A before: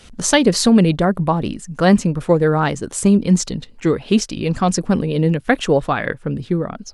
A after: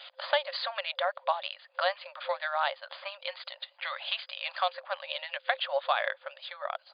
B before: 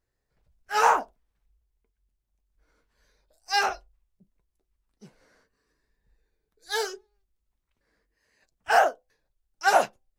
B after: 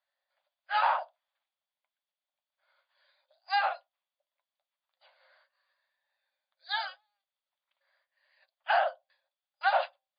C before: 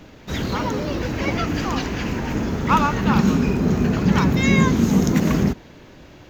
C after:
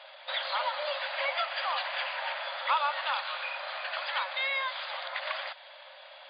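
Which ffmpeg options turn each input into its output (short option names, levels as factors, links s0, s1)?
-filter_complex "[0:a]acrossover=split=1200|2400[s0][s1][s2];[s0]acompressor=threshold=0.0562:ratio=4[s3];[s1]acompressor=threshold=0.0178:ratio=4[s4];[s2]acompressor=threshold=0.0126:ratio=4[s5];[s3][s4][s5]amix=inputs=3:normalize=0,equalizer=f=3400:t=o:w=0.22:g=8,afftfilt=real='re*between(b*sr/4096,520,4900)':imag='im*between(b*sr/4096,520,4900)':win_size=4096:overlap=0.75"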